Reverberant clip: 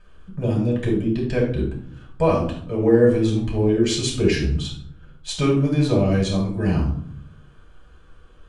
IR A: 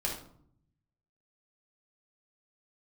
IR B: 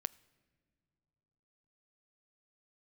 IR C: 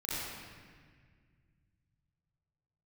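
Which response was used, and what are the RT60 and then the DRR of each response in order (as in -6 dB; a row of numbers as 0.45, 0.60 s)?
A; 0.65 s, not exponential, 1.7 s; -3.5, 18.5, -10.5 dB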